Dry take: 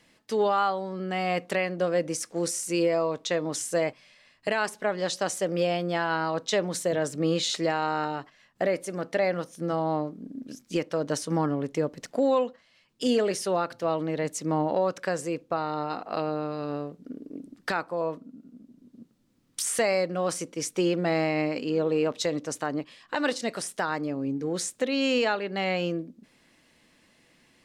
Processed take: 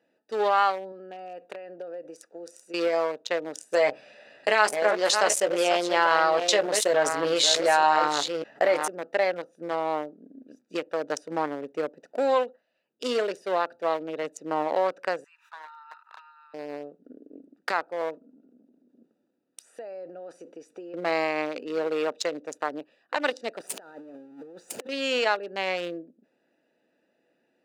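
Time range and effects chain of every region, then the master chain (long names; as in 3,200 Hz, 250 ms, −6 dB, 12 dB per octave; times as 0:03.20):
0:00.92–0:02.74: downward compressor 10 to 1, threshold −28 dBFS + low-shelf EQ 270 Hz −8.5 dB
0:03.72–0:08.88: delay that plays each chunk backwards 588 ms, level −8.5 dB + double-tracking delay 14 ms −6 dB + envelope flattener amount 50%
0:15.24–0:16.54: Chebyshev high-pass filter 910 Hz, order 10 + notch filter 4,700 Hz, Q 7.8 + background raised ahead of every attack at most 140 dB per second
0:18.23–0:20.94: downward compressor 5 to 1, threshold −33 dBFS + parametric band 120 Hz −5 dB 1.3 octaves + transient designer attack +1 dB, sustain +7 dB
0:23.60–0:24.89: converter with a step at zero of −30 dBFS + compressor whose output falls as the input rises −33 dBFS, ratio −0.5 + highs frequency-modulated by the lows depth 0.14 ms
whole clip: adaptive Wiener filter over 41 samples; high-pass filter 550 Hz 12 dB per octave; level +5 dB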